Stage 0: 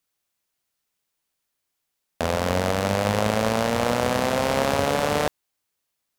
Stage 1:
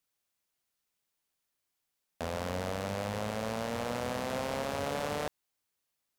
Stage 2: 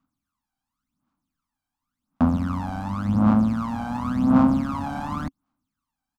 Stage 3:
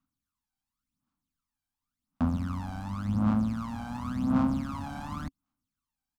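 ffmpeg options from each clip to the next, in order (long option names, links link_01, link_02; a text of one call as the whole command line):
ffmpeg -i in.wav -af "alimiter=limit=-17dB:level=0:latency=1:release=37,volume=-4.5dB" out.wav
ffmpeg -i in.wav -af "firequalizer=gain_entry='entry(120,0);entry(270,12);entry(400,-19);entry(750,-4);entry(1200,3);entry(1800,-13);entry(14000,-18)':delay=0.05:min_phase=1,aphaser=in_gain=1:out_gain=1:delay=1.3:decay=0.75:speed=0.91:type=sinusoidal,volume=5dB" out.wav
ffmpeg -i in.wav -af "equalizer=frequency=540:width=0.33:gain=-7.5,volume=-3dB" out.wav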